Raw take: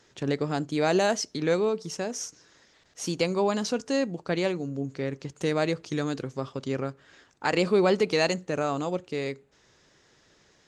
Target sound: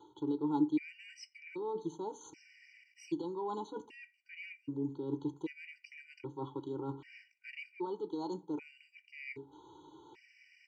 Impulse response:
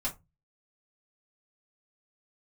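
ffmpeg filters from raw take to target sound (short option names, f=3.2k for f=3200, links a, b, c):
-filter_complex "[0:a]aecho=1:1:2.1:0.98,acontrast=85,alimiter=limit=-10dB:level=0:latency=1:release=438,areverse,acompressor=threshold=-31dB:ratio=12,areverse,asplit=3[a][b][c];[a]bandpass=f=300:t=q:w=8,volume=0dB[d];[b]bandpass=f=870:t=q:w=8,volume=-6dB[e];[c]bandpass=f=2.24k:t=q:w=8,volume=-9dB[f];[d][e][f]amix=inputs=3:normalize=0,asplit=2[g][h];[h]adelay=88,lowpass=f=1.1k:p=1,volume=-21dB,asplit=2[i][j];[j]adelay=88,lowpass=f=1.1k:p=1,volume=0.37,asplit=2[k][l];[l]adelay=88,lowpass=f=1.1k:p=1,volume=0.37[m];[g][i][k][m]amix=inputs=4:normalize=0,asplit=2[n][o];[1:a]atrim=start_sample=2205,adelay=9[p];[o][p]afir=irnorm=-1:irlink=0,volume=-16.5dB[q];[n][q]amix=inputs=2:normalize=0,afftfilt=real='re*gt(sin(2*PI*0.64*pts/sr)*(1-2*mod(floor(b*sr/1024/1500),2)),0)':imag='im*gt(sin(2*PI*0.64*pts/sr)*(1-2*mod(floor(b*sr/1024/1500),2)),0)':win_size=1024:overlap=0.75,volume=11.5dB"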